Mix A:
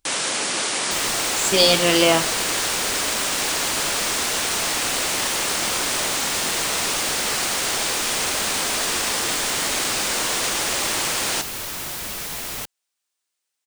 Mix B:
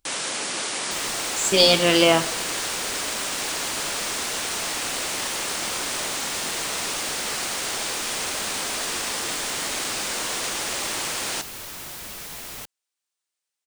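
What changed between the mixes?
first sound -4.5 dB; second sound -6.5 dB

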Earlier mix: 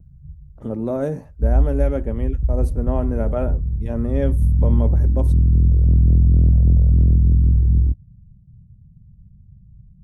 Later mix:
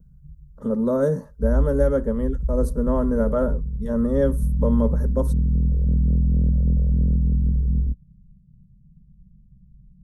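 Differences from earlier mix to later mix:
speech +5.0 dB; master: add fixed phaser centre 490 Hz, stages 8

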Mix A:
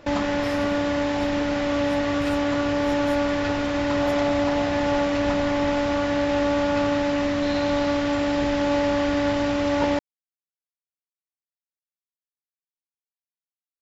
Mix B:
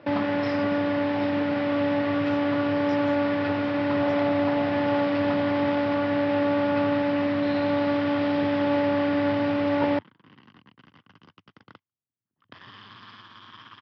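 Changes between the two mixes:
first sound: add air absorption 220 m; second sound: unmuted; master: add Chebyshev band-pass 100–5200 Hz, order 4

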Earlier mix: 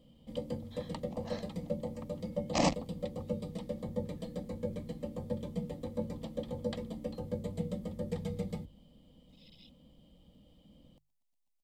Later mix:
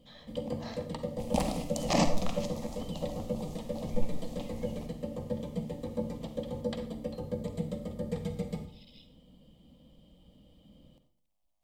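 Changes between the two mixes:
speech: entry -0.65 s; second sound: unmuted; reverb: on, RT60 0.60 s

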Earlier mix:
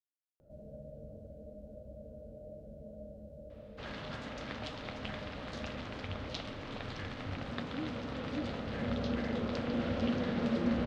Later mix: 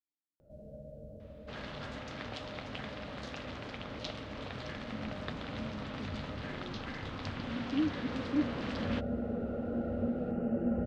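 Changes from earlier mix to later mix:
speech +9.5 dB; second sound: entry -2.30 s

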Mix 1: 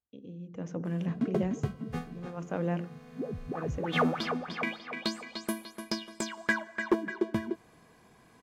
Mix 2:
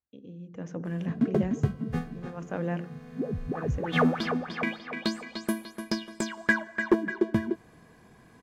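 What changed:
background: add low shelf 430 Hz +7 dB; master: add bell 1700 Hz +5 dB 0.3 oct

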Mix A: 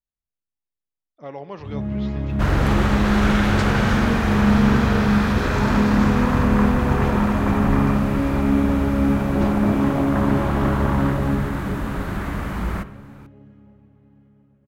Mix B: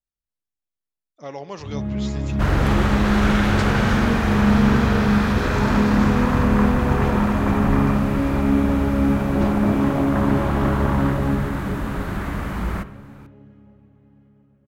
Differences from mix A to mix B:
speech: remove air absorption 280 m; first sound: send on

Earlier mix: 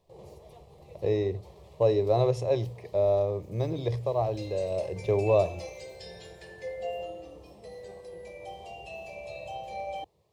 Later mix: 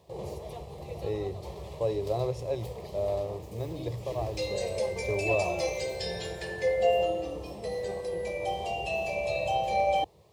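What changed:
speech -6.0 dB; background +10.5 dB

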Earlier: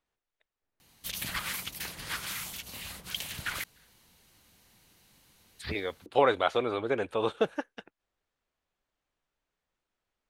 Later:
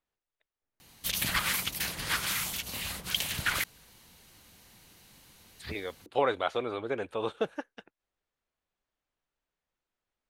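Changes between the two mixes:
speech -3.5 dB; background +5.5 dB

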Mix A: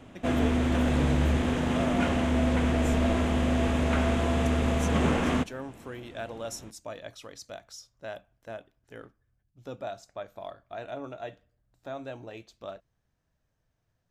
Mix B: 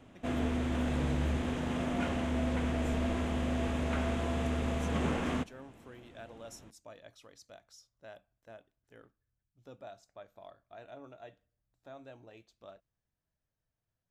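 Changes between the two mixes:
speech -11.5 dB; background -7.0 dB

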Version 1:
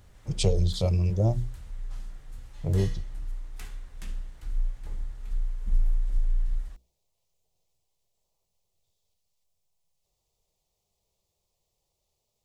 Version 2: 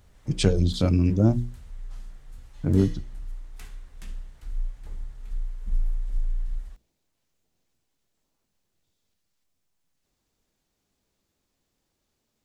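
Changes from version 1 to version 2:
speech: remove fixed phaser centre 640 Hz, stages 4; reverb: off

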